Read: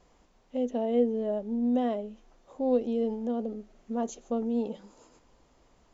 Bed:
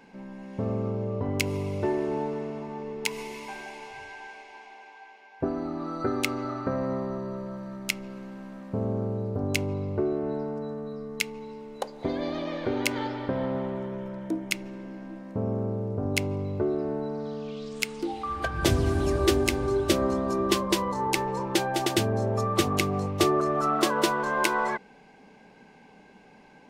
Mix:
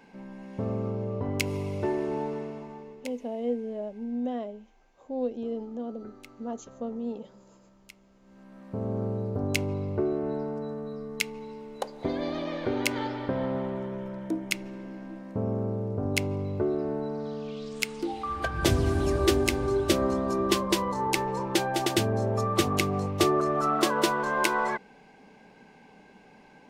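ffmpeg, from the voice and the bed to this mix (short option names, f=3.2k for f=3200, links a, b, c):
-filter_complex "[0:a]adelay=2500,volume=-4.5dB[a];[1:a]volume=20dB,afade=t=out:st=2.36:d=0.82:silence=0.0944061,afade=t=in:st=8.21:d=0.85:silence=0.0841395[b];[a][b]amix=inputs=2:normalize=0"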